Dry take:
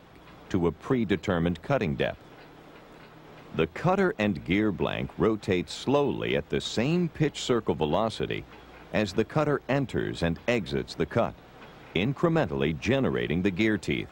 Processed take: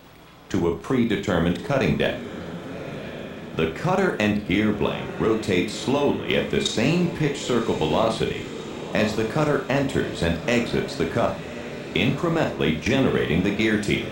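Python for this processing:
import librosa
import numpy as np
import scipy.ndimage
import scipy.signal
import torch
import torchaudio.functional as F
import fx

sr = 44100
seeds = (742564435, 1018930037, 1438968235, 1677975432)

y = fx.high_shelf(x, sr, hz=4700.0, db=9.5)
y = fx.level_steps(y, sr, step_db=14)
y = fx.echo_diffused(y, sr, ms=1123, feedback_pct=58, wet_db=-12.0)
y = fx.rev_schroeder(y, sr, rt60_s=0.31, comb_ms=26, drr_db=3.5)
y = F.gain(torch.from_numpy(y), 7.0).numpy()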